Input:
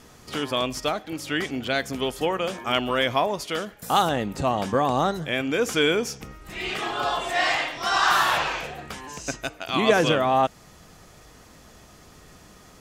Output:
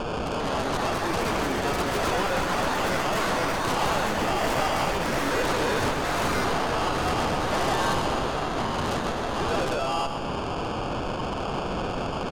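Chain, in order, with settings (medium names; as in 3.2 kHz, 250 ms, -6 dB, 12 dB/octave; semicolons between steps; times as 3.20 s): high-pass 510 Hz 12 dB/octave; in parallel at 0 dB: compression, threshold -37 dBFS, peak gain reduction 19.5 dB; on the sum: valve stage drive 29 dB, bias 0.7; peak limiter -36.5 dBFS, peak gain reduction 11.5 dB; resonant high shelf 6.4 kHz +13.5 dB, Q 1.5; sample-and-hold 23×; distance through air 150 m; sine folder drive 13 dB, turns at -24.5 dBFS; ever faster or slower copies 415 ms, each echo +5 st, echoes 3; on a send: feedback delay 132 ms, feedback 59%, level -9 dB; on the sum: tape speed +4%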